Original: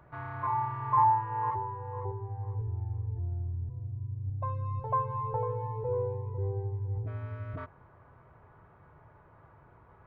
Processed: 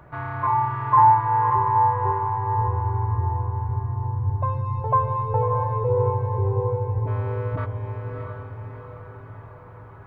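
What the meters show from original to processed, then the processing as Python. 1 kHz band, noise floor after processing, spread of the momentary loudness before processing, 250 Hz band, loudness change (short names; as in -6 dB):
+11.0 dB, -43 dBFS, 11 LU, +10.5 dB, +10.0 dB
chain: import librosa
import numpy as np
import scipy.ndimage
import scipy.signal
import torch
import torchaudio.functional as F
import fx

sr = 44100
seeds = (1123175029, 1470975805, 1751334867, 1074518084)

y = fx.echo_diffused(x, sr, ms=656, feedback_pct=51, wet_db=-4.5)
y = y * 10.0 ** (9.0 / 20.0)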